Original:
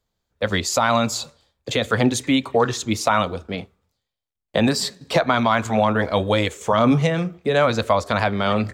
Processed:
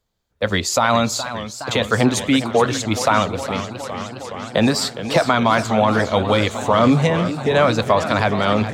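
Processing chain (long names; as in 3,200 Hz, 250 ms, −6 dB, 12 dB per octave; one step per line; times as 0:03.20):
feedback echo with a swinging delay time 416 ms, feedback 78%, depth 155 cents, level −12 dB
level +2 dB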